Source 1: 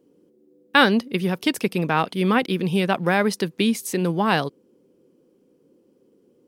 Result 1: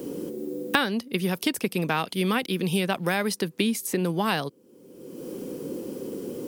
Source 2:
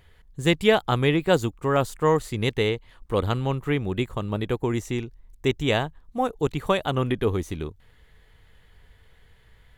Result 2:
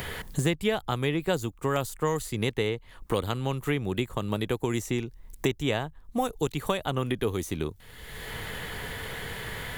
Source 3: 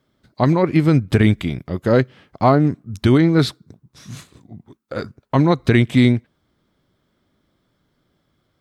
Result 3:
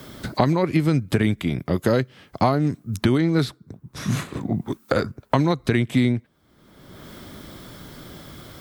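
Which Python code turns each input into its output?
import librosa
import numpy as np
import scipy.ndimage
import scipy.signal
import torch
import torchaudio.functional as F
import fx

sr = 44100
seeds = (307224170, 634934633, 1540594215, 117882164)

y = fx.high_shelf(x, sr, hz=7200.0, db=10.5)
y = fx.band_squash(y, sr, depth_pct=100)
y = y * 10.0 ** (-5.0 / 20.0)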